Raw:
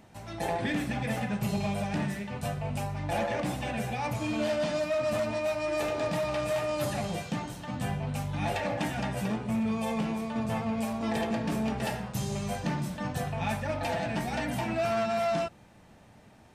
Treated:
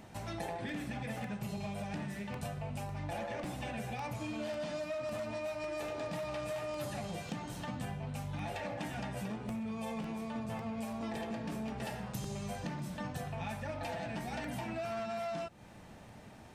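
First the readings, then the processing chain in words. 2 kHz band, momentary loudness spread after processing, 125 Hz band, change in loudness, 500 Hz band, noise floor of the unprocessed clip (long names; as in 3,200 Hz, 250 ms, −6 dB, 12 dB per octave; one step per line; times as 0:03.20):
−8.5 dB, 3 LU, −8.0 dB, −8.5 dB, −9.0 dB, −55 dBFS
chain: downward compressor 6 to 1, threshold −40 dBFS, peak gain reduction 13 dB
regular buffer underruns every 0.55 s, samples 64, repeat, from 0:00.69
level +2.5 dB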